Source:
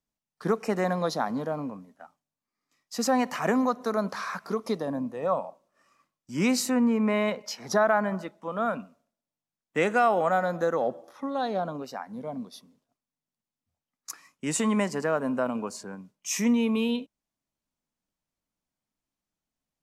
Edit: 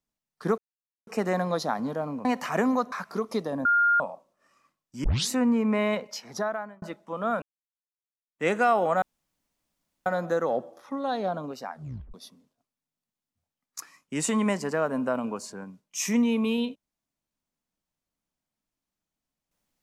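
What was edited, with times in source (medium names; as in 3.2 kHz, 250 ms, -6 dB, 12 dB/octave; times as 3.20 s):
0.58 s: insert silence 0.49 s
1.76–3.15 s: delete
3.82–4.27 s: delete
5.00–5.35 s: bleep 1.41 kHz -18 dBFS
6.39 s: tape start 0.25 s
7.37–8.17 s: fade out
8.77–9.82 s: fade in exponential
10.37 s: insert room tone 1.04 s
12.02 s: tape stop 0.43 s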